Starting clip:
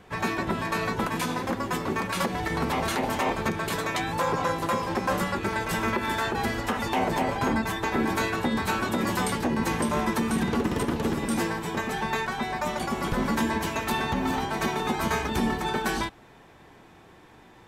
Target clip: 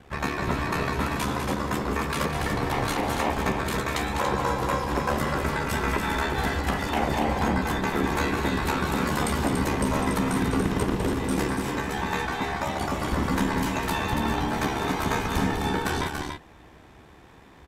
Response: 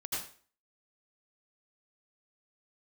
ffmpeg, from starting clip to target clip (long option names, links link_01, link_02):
-af "aeval=exprs='val(0)*sin(2*PI*36*n/s)':channel_layout=same,equalizer=frequency=64:width=1.8:gain=11.5,aecho=1:1:201.2|285.7:0.398|0.501,volume=2dB"